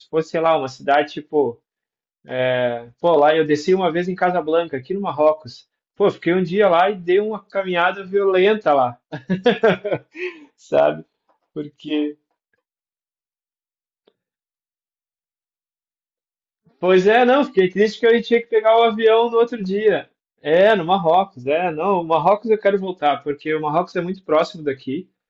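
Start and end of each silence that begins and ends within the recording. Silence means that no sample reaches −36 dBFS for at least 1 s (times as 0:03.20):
0:12.13–0:16.82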